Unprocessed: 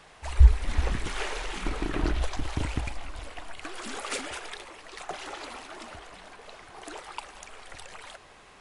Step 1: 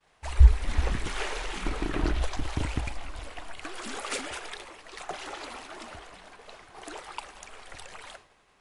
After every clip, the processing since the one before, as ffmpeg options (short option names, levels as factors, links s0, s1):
-af "agate=range=0.0224:threshold=0.00631:ratio=3:detection=peak"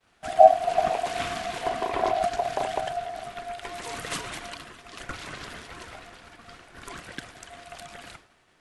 -af "aeval=exprs='val(0)*sin(2*PI*700*n/s)':c=same,volume=1.5"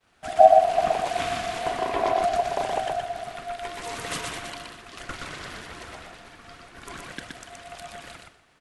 -af "aecho=1:1:122|244|366:0.668|0.107|0.0171"